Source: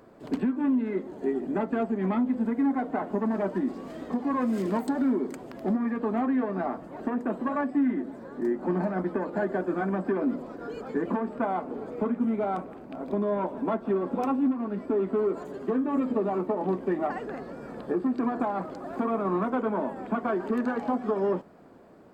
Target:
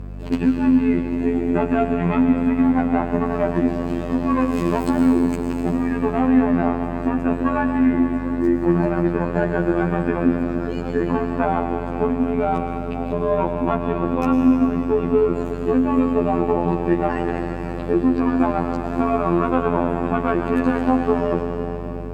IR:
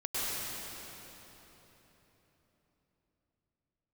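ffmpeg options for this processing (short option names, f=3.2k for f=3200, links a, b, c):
-filter_complex "[0:a]asplit=2[a][b];[1:a]atrim=start_sample=2205,lowshelf=f=100:g=12,highshelf=f=2.1k:g=7.5[c];[b][c]afir=irnorm=-1:irlink=0,volume=-12.5dB[d];[a][d]amix=inputs=2:normalize=0,afftfilt=real='hypot(re,im)*cos(PI*b)':imag='0':win_size=2048:overlap=0.75,aeval=exprs='val(0)+0.0112*(sin(2*PI*50*n/s)+sin(2*PI*2*50*n/s)/2+sin(2*PI*3*50*n/s)/3+sin(2*PI*4*50*n/s)/4+sin(2*PI*5*50*n/s)/5)':c=same,equalizer=f=2.6k:t=o:w=0.21:g=10,volume=8.5dB"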